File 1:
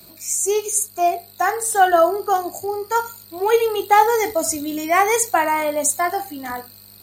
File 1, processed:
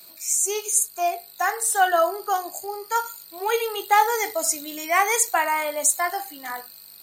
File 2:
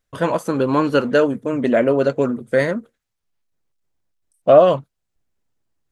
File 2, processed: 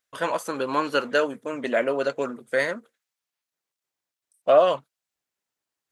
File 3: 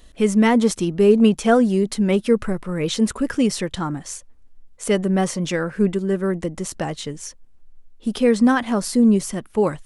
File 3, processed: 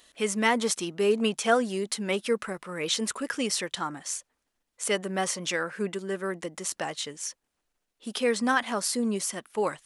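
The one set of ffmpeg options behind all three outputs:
-af "highpass=f=1100:p=1"

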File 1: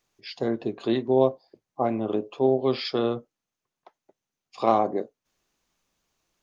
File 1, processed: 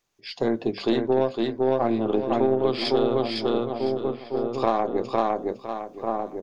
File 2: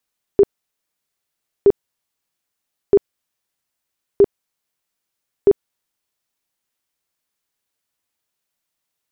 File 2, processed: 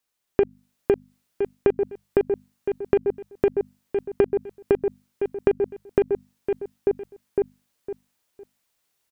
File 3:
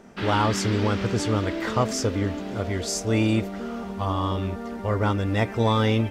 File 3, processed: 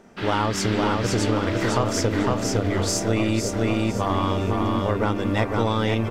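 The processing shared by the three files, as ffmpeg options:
-filter_complex "[0:a]bandreject=f=50:t=h:w=6,bandreject=f=100:t=h:w=6,bandreject=f=150:t=h:w=6,bandreject=f=200:t=h:w=6,bandreject=f=250:t=h:w=6,aeval=exprs='0.562*(cos(1*acos(clip(val(0)/0.562,-1,1)))-cos(1*PI/2))+0.0251*(cos(4*acos(clip(val(0)/0.562,-1,1)))-cos(4*PI/2))+0.0501*(cos(6*acos(clip(val(0)/0.562,-1,1)))-cos(6*PI/2))+0.0112*(cos(7*acos(clip(val(0)/0.562,-1,1)))-cos(7*PI/2))+0.00794*(cos(8*acos(clip(val(0)/0.562,-1,1)))-cos(8*PI/2))':c=same,asplit=2[s0][s1];[s1]aecho=0:1:507|1014|1521:0.668|0.16|0.0385[s2];[s0][s2]amix=inputs=2:normalize=0,dynaudnorm=f=110:g=5:m=1.78,asplit=2[s3][s4];[s4]adelay=1399,volume=0.398,highshelf=f=4000:g=-31.5[s5];[s3][s5]amix=inputs=2:normalize=0,acompressor=threshold=0.141:ratio=6"

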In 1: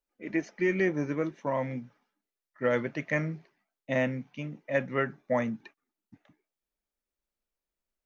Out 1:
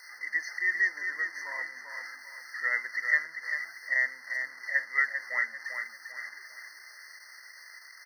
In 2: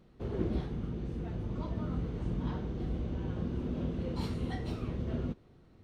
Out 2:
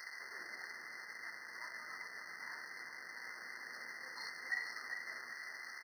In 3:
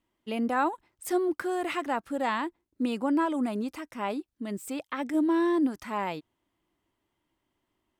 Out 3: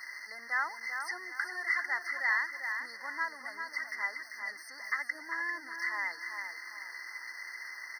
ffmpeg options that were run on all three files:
-filter_complex "[0:a]aeval=exprs='val(0)+0.5*0.0168*sgn(val(0))':c=same,asplit=2[s0][s1];[s1]adelay=395,lowpass=f=4800:p=1,volume=0.501,asplit=2[s2][s3];[s3]adelay=395,lowpass=f=4800:p=1,volume=0.38,asplit=2[s4][s5];[s5]adelay=395,lowpass=f=4800:p=1,volume=0.38,asplit=2[s6][s7];[s7]adelay=395,lowpass=f=4800:p=1,volume=0.38,asplit=2[s8][s9];[s9]adelay=395,lowpass=f=4800:p=1,volume=0.38[s10];[s2][s4][s6][s8][s10]amix=inputs=5:normalize=0[s11];[s0][s11]amix=inputs=2:normalize=0,acrossover=split=6100[s12][s13];[s13]acompressor=threshold=0.00112:ratio=4:attack=1:release=60[s14];[s12][s14]amix=inputs=2:normalize=0,highpass=f=2100:t=q:w=3.9,afftfilt=real='re*eq(mod(floor(b*sr/1024/2100),2),0)':imag='im*eq(mod(floor(b*sr/1024/2100),2),0)':win_size=1024:overlap=0.75"

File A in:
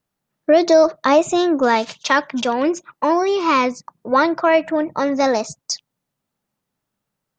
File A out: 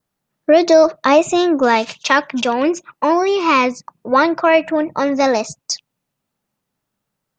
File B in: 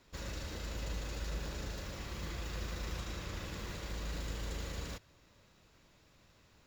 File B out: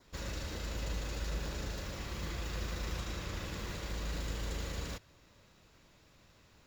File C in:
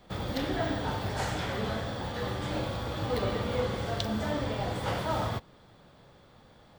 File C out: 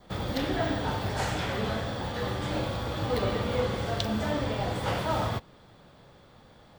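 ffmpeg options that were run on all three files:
-af "adynamicequalizer=threshold=0.00447:dfrequency=2600:dqfactor=5.3:tfrequency=2600:tqfactor=5.3:attack=5:release=100:ratio=0.375:range=3:mode=boostabove:tftype=bell,volume=1.26"

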